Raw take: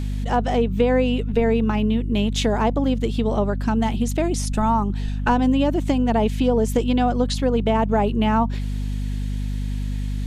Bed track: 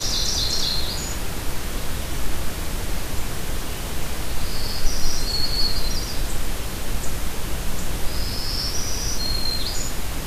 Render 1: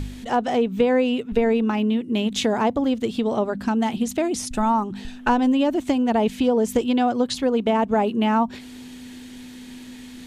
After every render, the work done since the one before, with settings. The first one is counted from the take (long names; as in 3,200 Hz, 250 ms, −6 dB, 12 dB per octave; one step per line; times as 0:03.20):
hum removal 50 Hz, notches 4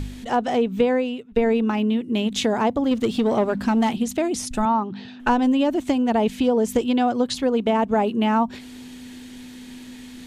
0:00.84–0:01.36: fade out, to −23.5 dB
0:02.91–0:03.93: leveller curve on the samples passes 1
0:04.65–0:05.20: Chebyshev band-pass filter 120–4,600 Hz, order 3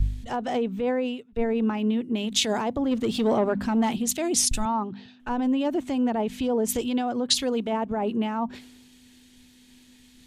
brickwall limiter −18 dBFS, peak gain reduction 10 dB
multiband upward and downward expander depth 100%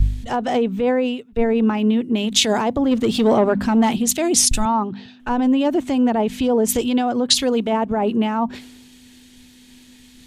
level +7 dB
brickwall limiter −3 dBFS, peak gain reduction 1 dB